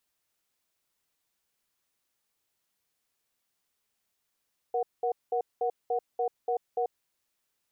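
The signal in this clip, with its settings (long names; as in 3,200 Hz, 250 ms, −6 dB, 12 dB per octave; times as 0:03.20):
tone pair in a cadence 474 Hz, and 737 Hz, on 0.09 s, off 0.20 s, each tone −28 dBFS 2.28 s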